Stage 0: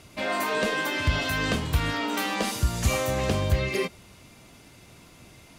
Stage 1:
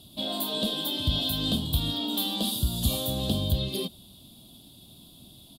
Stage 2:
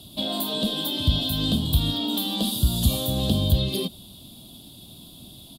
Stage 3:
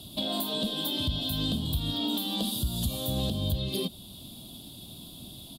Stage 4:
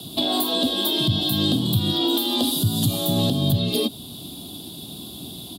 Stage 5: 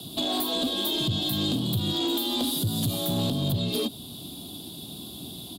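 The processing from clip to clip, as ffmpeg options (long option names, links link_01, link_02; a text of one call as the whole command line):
ffmpeg -i in.wav -af "firequalizer=gain_entry='entry(100,0);entry(230,6);entry(450,-7);entry(650,-2);entry(1300,-15);entry(2100,-25);entry(3400,14);entry(6000,-10);entry(8600,3);entry(12000,11)':delay=0.05:min_phase=1,volume=-3dB" out.wav
ffmpeg -i in.wav -filter_complex "[0:a]acrossover=split=260[link_01][link_02];[link_02]acompressor=threshold=-32dB:ratio=3[link_03];[link_01][link_03]amix=inputs=2:normalize=0,volume=6dB" out.wav
ffmpeg -i in.wav -af "alimiter=limit=-19.5dB:level=0:latency=1:release=453" out.wav
ffmpeg -i in.wav -af "afreqshift=45,volume=8.5dB" out.wav
ffmpeg -i in.wav -af "asoftclip=type=tanh:threshold=-17.5dB,volume=-3dB" out.wav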